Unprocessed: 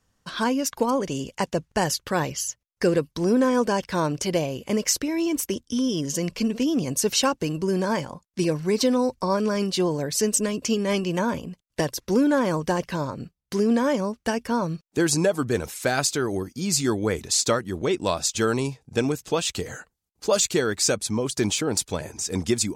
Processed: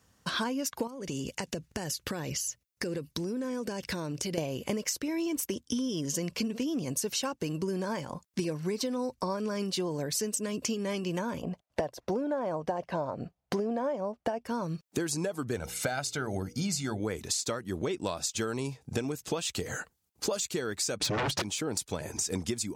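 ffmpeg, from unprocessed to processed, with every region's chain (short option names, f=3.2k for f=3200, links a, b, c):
-filter_complex "[0:a]asettb=1/sr,asplit=3[a][b][c];[a]atrim=end=0.874[d];[b]atrim=start=0.87:end=4.38,asetpts=PTS-STARTPTS,afade=t=in:d=0.004:c=qsin,afade=t=out:st=3.506:d=0.004:c=qsin,equalizer=f=980:t=o:w=1.4:g=-6.5,bandreject=f=3.2k:w=20,acompressor=threshold=-33dB:ratio=16:attack=3.2:release=140:knee=1:detection=peak[e];[c]atrim=start=4.376[f];[d][e]acrossfade=d=0.004:c1=hsin:c2=qsin[g];[g][f]acrossfade=d=0.004:c1=qsin:c2=hsin,asettb=1/sr,asplit=3[h][i][j];[h]atrim=end=11.424[k];[i]atrim=start=11.42:end=14.46,asetpts=PTS-STARTPTS,afade=t=in:d=0.004:c=qsin,afade=t=out:st=3.036:d=0.004:c=qsin,lowpass=f=2.7k:p=1,equalizer=f=690:t=o:w=0.85:g=14.5[l];[j]atrim=start=14.456[m];[k][l]acrossfade=d=0.004:c1=hsin:c2=qsin[n];[n][m]acrossfade=d=0.004:c1=qsin:c2=hsin,asettb=1/sr,asplit=3[o][p][q];[o]atrim=end=15.564[r];[p]atrim=start=15.56:end=17,asetpts=PTS-STARTPTS,afade=t=in:d=0.004:c=qsin,afade=t=out:st=1.436:d=0.004:c=qsin,highshelf=f=8.8k:g=-9,bandreject=f=60:t=h:w=6,bandreject=f=120:t=h:w=6,bandreject=f=180:t=h:w=6,bandreject=f=240:t=h:w=6,bandreject=f=300:t=h:w=6,bandreject=f=360:t=h:w=6,bandreject=f=420:t=h:w=6,bandreject=f=480:t=h:w=6,aecho=1:1:1.4:0.52,atrim=end_sample=63504[s];[q]atrim=start=16.996[t];[r][s]acrossfade=d=0.004:c1=hsin:c2=qsin[u];[u][t]acrossfade=d=0.004:c1=qsin:c2=hsin,asettb=1/sr,asplit=3[v][w][x];[v]atrim=end=21.004[y];[w]atrim=start=21:end=21.42,asetpts=PTS-STARTPTS,afade=t=in:d=0.004:c=qsin,afade=t=out:st=0.416:d=0.004:c=qsin,lowpass=3.3k,aecho=1:1:6.7:0.91,atrim=end_sample=18522,aeval=exprs='0.299*sin(PI/2*7.08*val(0)/0.299)':c=same[z];[x]atrim=start=21.416[aa];[y][z]acrossfade=d=0.004:c1=hsin:c2=qsin[ab];[ab][aa]acrossfade=d=0.004:c1=qsin:c2=hsin,highshelf=f=12k:g=4.5,acompressor=threshold=-33dB:ratio=16,highpass=57,volume=4.5dB"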